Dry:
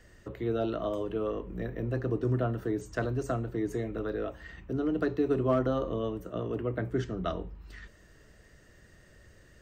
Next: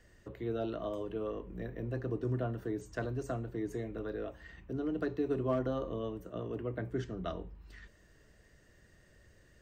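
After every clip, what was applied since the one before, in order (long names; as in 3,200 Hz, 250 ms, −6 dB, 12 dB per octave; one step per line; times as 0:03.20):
notch filter 1,300 Hz, Q 17
level −5.5 dB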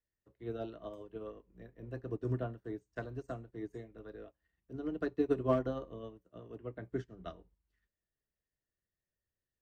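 expander for the loud parts 2.5 to 1, over −53 dBFS
level +4 dB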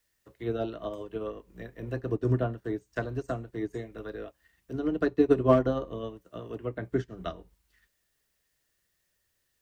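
one half of a high-frequency compander encoder only
level +9 dB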